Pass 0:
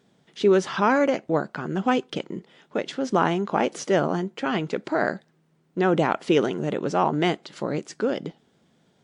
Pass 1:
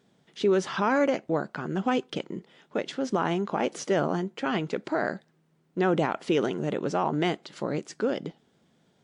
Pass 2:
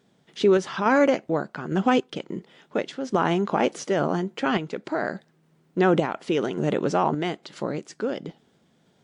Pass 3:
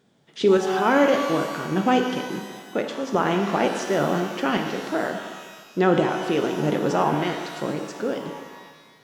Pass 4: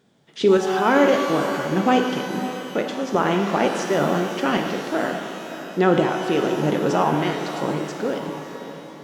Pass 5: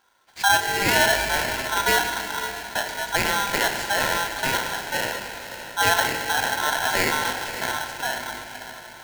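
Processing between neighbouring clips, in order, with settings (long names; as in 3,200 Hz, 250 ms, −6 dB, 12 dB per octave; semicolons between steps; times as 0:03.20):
brickwall limiter −12.5 dBFS, peak gain reduction 5 dB; level −2.5 dB
sample-and-hold tremolo; level +5.5 dB
reverb with rising layers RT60 1.5 s, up +12 semitones, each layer −8 dB, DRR 4.5 dB
feedback delay with all-pass diffusion 578 ms, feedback 45%, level −11 dB; level +1.5 dB
ring modulator with a square carrier 1,200 Hz; level −3 dB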